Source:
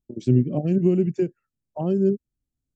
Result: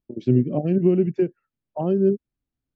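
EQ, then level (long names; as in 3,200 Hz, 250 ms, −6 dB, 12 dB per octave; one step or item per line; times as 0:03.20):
high-frequency loss of the air 280 metres
low-shelf EQ 220 Hz −8.5 dB
+5.0 dB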